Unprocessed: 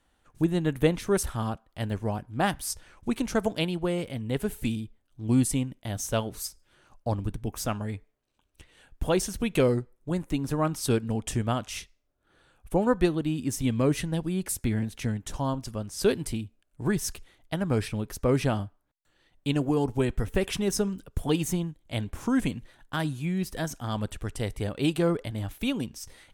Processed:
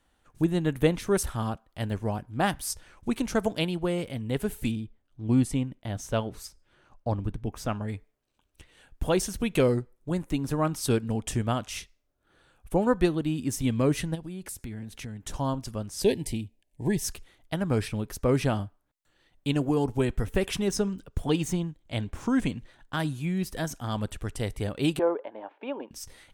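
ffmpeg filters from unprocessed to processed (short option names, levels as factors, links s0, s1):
-filter_complex "[0:a]asettb=1/sr,asplit=3[s0][s1][s2];[s0]atrim=end=4.714[s3];[s1]atrim=start=4.71:end=7.88,asetpts=PTS-STARTPTS,afade=t=in:d=0.004:c=qsin,afade=t=out:st=3.166:d=0.004:c=qsin,lowpass=f=3000:p=1[s4];[s2]atrim=start=7.876[s5];[s3][s4]acrossfade=d=0.004:c1=hsin:c2=qsin[s6];[s6][s5]acrossfade=d=0.004:c1=qsin:c2=hsin,asplit=3[s7][s8][s9];[s7]afade=t=out:st=14.14:d=0.02[s10];[s8]acompressor=threshold=0.0141:ratio=3:attack=3.2:release=140:knee=1:detection=peak,afade=t=in:st=14.14:d=0.02,afade=t=out:st=15.24:d=0.02[s11];[s9]afade=t=in:st=15.24:d=0.02[s12];[s10][s11][s12]amix=inputs=3:normalize=0,asettb=1/sr,asplit=3[s13][s14][s15];[s13]atrim=end=16.024[s16];[s14]atrim=start=16.02:end=17.04,asetpts=PTS-STARTPTS,afade=t=in:d=0.004:c=qsin,afade=t=out:st=1.016:d=0.004:c=qsin,asuperstop=centerf=1300:order=8:qfactor=1.8[s17];[s15]atrim=start=17.036[s18];[s16][s17]acrossfade=d=0.004:c1=hsin:c2=qsin[s19];[s19][s18]acrossfade=d=0.004:c1=qsin:c2=hsin,asettb=1/sr,asplit=3[s20][s21][s22];[s20]atrim=end=20.674[s23];[s21]atrim=start=20.67:end=22.97,asetpts=PTS-STARTPTS,afade=t=in:d=0.004:c=qsin,afade=t=out:st=2.296:d=0.004:c=qsin,equalizer=f=12000:w=1.4:g=-10[s24];[s22]atrim=start=22.966[s25];[s23][s24]acrossfade=d=0.004:c1=hsin:c2=qsin[s26];[s26][s25]acrossfade=d=0.004:c1=qsin:c2=hsin,asettb=1/sr,asplit=3[s27][s28][s29];[s27]atrim=end=24.994[s30];[s28]atrim=start=24.99:end=25.91,asetpts=PTS-STARTPTS,afade=t=in:d=0.004:c=qsin,afade=t=out:st=0.916:d=0.004:c=qsin,highpass=f=350:w=0.5412,highpass=f=350:w=1.3066,equalizer=f=570:t=q:w=4:g=5,equalizer=f=910:t=q:w=4:g=9,equalizer=f=1300:t=q:w=4:g=-5,equalizer=f=2000:t=q:w=4:g=-7,lowpass=f=2100:w=0.5412,lowpass=f=2100:w=1.3066[s31];[s29]atrim=start=25.906[s32];[s30][s31]acrossfade=d=0.004:c1=hsin:c2=qsin[s33];[s33][s32]acrossfade=d=0.004:c1=qsin:c2=hsin"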